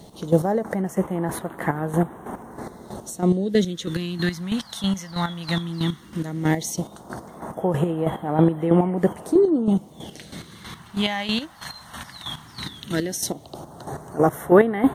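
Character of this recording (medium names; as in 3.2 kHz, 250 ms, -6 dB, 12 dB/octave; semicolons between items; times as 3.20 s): chopped level 3.1 Hz, depth 65%, duty 30%; a quantiser's noise floor 12-bit, dither none; phasing stages 2, 0.15 Hz, lowest notch 370–4900 Hz; WMA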